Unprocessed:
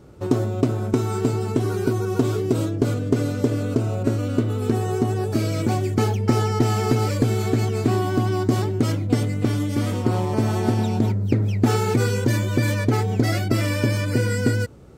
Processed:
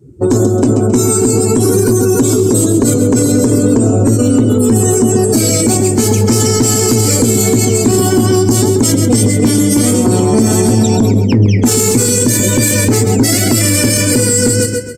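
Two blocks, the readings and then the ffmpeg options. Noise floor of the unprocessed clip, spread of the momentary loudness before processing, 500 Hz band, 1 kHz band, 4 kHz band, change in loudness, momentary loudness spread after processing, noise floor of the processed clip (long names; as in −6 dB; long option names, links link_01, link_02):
−26 dBFS, 3 LU, +12.0 dB, +6.0 dB, +14.5 dB, +11.5 dB, 1 LU, −13 dBFS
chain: -filter_complex "[0:a]aemphasis=mode=production:type=75kf,bandreject=frequency=560:width=13,afftdn=noise_reduction=33:noise_floor=-34,equalizer=frequency=250:width_type=o:width=1:gain=8,equalizer=frequency=500:width_type=o:width=1:gain=11,equalizer=frequency=2000:width_type=o:width=1:gain=6,equalizer=frequency=8000:width_type=o:width=1:gain=12,asplit=2[link_01][link_02];[link_02]aecho=0:1:134|268|402:0.282|0.0874|0.0271[link_03];[link_01][link_03]amix=inputs=2:normalize=0,asoftclip=type=tanh:threshold=-6.5dB,flanger=delay=7.3:depth=9.3:regen=71:speed=0.45:shape=sinusoidal,acrossover=split=300|3000[link_04][link_05][link_06];[link_05]acompressor=threshold=-28dB:ratio=6[link_07];[link_04][link_07][link_06]amix=inputs=3:normalize=0,aresample=32000,aresample=44100,alimiter=level_in=15.5dB:limit=-1dB:release=50:level=0:latency=1,volume=-1dB"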